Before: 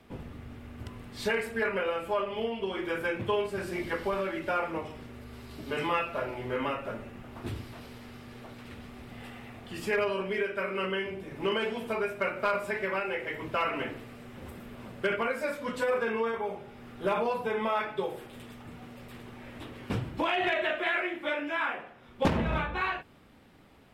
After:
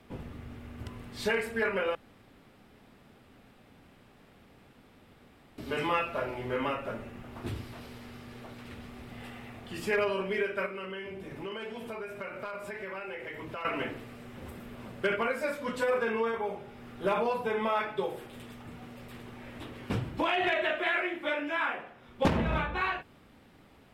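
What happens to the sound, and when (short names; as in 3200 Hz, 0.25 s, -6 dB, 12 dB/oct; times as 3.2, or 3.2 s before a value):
1.95–5.58 room tone
10.66–13.65 compressor 3:1, threshold -38 dBFS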